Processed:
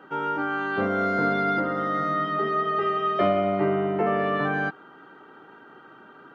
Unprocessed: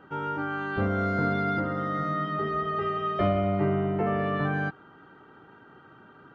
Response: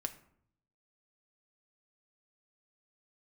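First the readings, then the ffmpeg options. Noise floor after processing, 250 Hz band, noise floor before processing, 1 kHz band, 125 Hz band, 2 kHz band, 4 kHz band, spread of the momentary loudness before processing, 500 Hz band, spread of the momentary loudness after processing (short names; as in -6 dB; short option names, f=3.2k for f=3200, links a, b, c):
-50 dBFS, +1.0 dB, -53 dBFS, +4.5 dB, -4.5 dB, +4.5 dB, +4.5 dB, 5 LU, +4.0 dB, 4 LU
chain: -af "highpass=240,volume=4.5dB"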